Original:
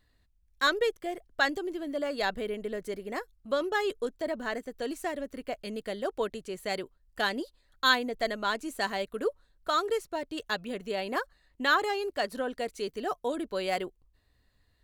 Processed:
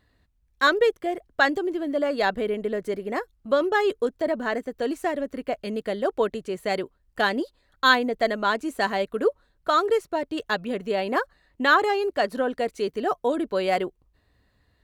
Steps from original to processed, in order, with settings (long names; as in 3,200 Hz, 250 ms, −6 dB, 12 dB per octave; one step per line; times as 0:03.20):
high-pass filter 72 Hz 6 dB per octave
high-shelf EQ 2,900 Hz −9 dB
level +8 dB